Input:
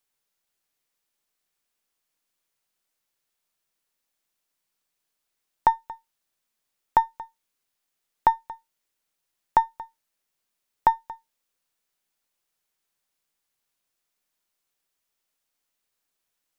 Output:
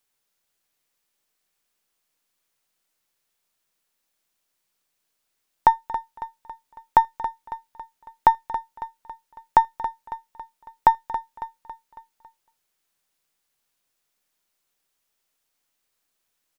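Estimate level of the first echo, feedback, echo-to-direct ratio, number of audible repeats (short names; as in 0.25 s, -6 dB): -12.0 dB, 51%, -10.5 dB, 4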